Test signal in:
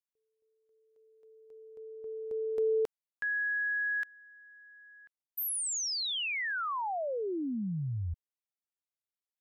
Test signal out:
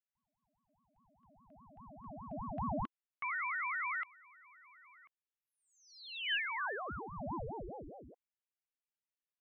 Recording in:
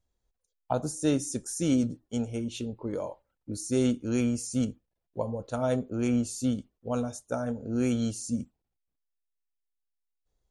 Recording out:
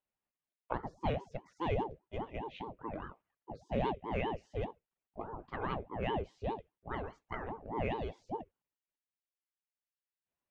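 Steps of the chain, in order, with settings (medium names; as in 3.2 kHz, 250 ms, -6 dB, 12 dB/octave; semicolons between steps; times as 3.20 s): cabinet simulation 190–3000 Hz, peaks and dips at 360 Hz +4 dB, 550 Hz -6 dB, 1.3 kHz +5 dB, 2.3 kHz +10 dB; ring modulator with a swept carrier 420 Hz, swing 65%, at 4.9 Hz; trim -5 dB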